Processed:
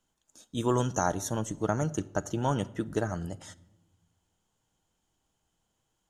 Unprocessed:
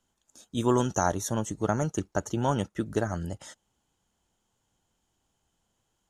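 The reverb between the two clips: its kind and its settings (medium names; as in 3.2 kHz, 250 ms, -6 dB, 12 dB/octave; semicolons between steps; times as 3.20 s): simulated room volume 3900 m³, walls furnished, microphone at 0.54 m; trim -2 dB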